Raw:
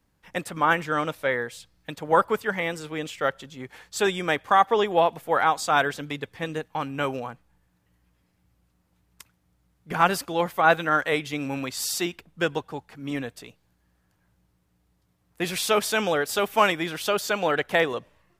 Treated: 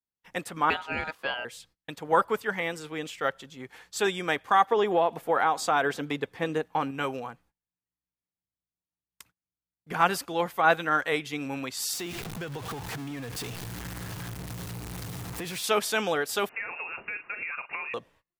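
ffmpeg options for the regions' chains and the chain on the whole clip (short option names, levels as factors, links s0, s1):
-filter_complex "[0:a]asettb=1/sr,asplit=3[s0][s1][s2];[s0]atrim=end=0.704[s3];[s1]atrim=start=0.7:end=1.45,asetpts=PTS-STARTPTS,afade=t=in:d=0.004:c=qsin,afade=t=out:st=0.746:d=0.004:c=qsin,highshelf=f=5800:g=-9.5,aeval=exprs='val(0)*sin(2*PI*1100*n/s)':c=same[s4];[s2]atrim=start=1.446[s5];[s3][s4]acrossfade=d=0.004:c1=hsin:c2=qsin[s6];[s6][s5]acrossfade=d=0.004:c1=qsin:c2=hsin,asettb=1/sr,asplit=3[s7][s8][s9];[s7]atrim=end=4.724[s10];[s8]atrim=start=4.72:end=6.91,asetpts=PTS-STARTPTS,afade=t=in:d=0.004:c=qsin,afade=t=out:st=2.186:d=0.004:c=qsin,equalizer=f=450:w=0.31:g=6.5,acompressor=threshold=0.141:ratio=3:attack=3.2:release=140:knee=1:detection=peak[s11];[s9]atrim=start=6.906[s12];[s10][s11]acrossfade=d=0.004:c1=hsin:c2=qsin[s13];[s13][s12]acrossfade=d=0.004:c1=qsin:c2=hsin,asettb=1/sr,asplit=3[s14][s15][s16];[s14]atrim=end=11.934[s17];[s15]atrim=start=11.93:end=15.64,asetpts=PTS-STARTPTS,afade=t=in:d=0.004:c=qsin,afade=t=out:st=3.706:d=0.004:c=qsin,aeval=exprs='val(0)+0.5*0.0422*sgn(val(0))':c=same,equalizer=f=120:w=2.1:g=11.5,acompressor=threshold=0.0355:ratio=8:attack=3.2:release=140:knee=1:detection=peak[s18];[s16]atrim=start=15.636[s19];[s17][s18]acrossfade=d=0.004:c1=hsin:c2=qsin[s20];[s20][s19]acrossfade=d=0.004:c1=qsin:c2=hsin,asettb=1/sr,asplit=3[s21][s22][s23];[s21]atrim=end=16.494[s24];[s22]atrim=start=16.49:end=17.94,asetpts=PTS-STARTPTS,afade=t=in:d=0.004:c=qsin,afade=t=out:st=1.446:d=0.004:c=qsin,asplit=2[s25][s26];[s26]adelay=38,volume=0.224[s27];[s25][s27]amix=inputs=2:normalize=0,atrim=end_sample=63945,acompressor=threshold=0.0398:ratio=8:attack=3.2:release=140:knee=1:detection=peak,lowpass=f=2500:t=q:w=0.5098,lowpass=f=2500:t=q:w=0.6013,lowpass=f=2500:t=q:w=0.9,lowpass=f=2500:t=q:w=2.563,afreqshift=-2900[s28];[s23]atrim=start=17.936[s29];[s24][s28]acrossfade=d=0.004:c1=hsin:c2=qsin[s30];[s30][s29]acrossfade=d=0.004:c1=qsin:c2=hsin,bandreject=f=590:w=12,agate=range=0.0447:threshold=0.00178:ratio=16:detection=peak,lowshelf=f=130:g=-7,volume=0.75"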